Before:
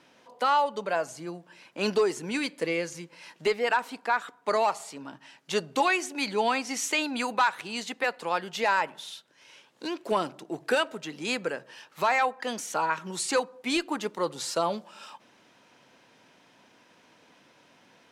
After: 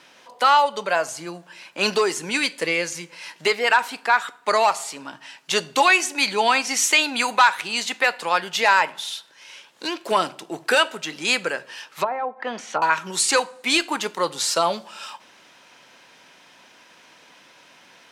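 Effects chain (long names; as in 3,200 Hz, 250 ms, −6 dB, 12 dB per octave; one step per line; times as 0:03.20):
tilt shelving filter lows −5.5 dB, about 670 Hz
coupled-rooms reverb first 0.37 s, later 2.2 s, from −26 dB, DRR 15 dB
0:11.88–0:12.82: treble cut that deepens with the level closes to 550 Hz, closed at −22 dBFS
level +5.5 dB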